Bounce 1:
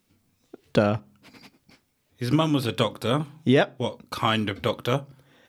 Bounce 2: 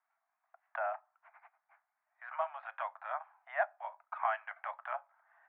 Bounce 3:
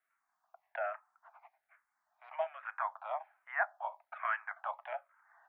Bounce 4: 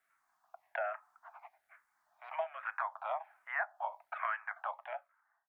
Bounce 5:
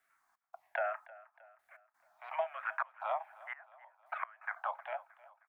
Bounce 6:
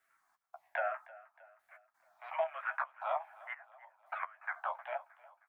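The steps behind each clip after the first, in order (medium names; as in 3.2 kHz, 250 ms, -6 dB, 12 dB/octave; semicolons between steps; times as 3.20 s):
steep high-pass 660 Hz 96 dB/octave; dynamic bell 1.2 kHz, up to -6 dB, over -40 dBFS, Q 1.6; steep low-pass 1.8 kHz 36 dB/octave; trim -3 dB
barber-pole phaser -1.2 Hz; trim +4 dB
fade out at the end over 1.18 s; compression 3:1, threshold -40 dBFS, peak gain reduction 10.5 dB; wow and flutter 25 cents; trim +5.5 dB
trance gate "xx.xxx...x.xxx" 85 bpm -24 dB; feedback delay 312 ms, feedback 48%, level -20 dB; trim +2 dB
flange 0.52 Hz, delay 8.5 ms, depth 7.1 ms, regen -16%; trim +3.5 dB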